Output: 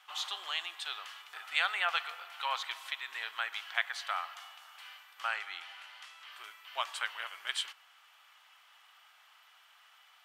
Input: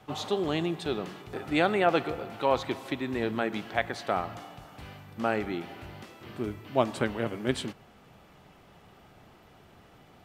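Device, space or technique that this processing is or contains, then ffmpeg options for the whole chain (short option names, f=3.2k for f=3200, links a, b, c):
headphones lying on a table: -filter_complex "[0:a]highpass=f=1.1k:w=0.5412,highpass=f=1.1k:w=1.3066,equalizer=f=3.1k:t=o:w=0.22:g=6,asettb=1/sr,asplit=3[a][b][c];[a]atrim=end=5.274[d];[b]atrim=start=5.27:end=6.32,asetpts=PTS-STARTPTS,afade=t=in:d=0.004:c=qsin,afade=t=out:st=1.046:d=0.004:c=qsin,lowpass=11k[e];[c]atrim=start=6.316[f];[d][e]acrossfade=d=0.004:c1=hsin:c2=qsin[g];[g][f]acrossfade=d=0.004:c1=qsin:c2=hsin"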